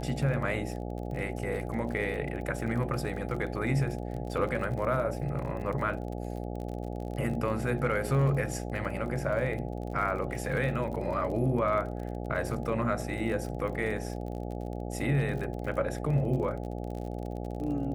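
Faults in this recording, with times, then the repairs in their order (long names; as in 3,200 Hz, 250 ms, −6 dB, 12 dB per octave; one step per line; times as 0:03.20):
mains buzz 60 Hz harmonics 14 −36 dBFS
surface crackle 38 per second −37 dBFS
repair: click removal
hum removal 60 Hz, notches 14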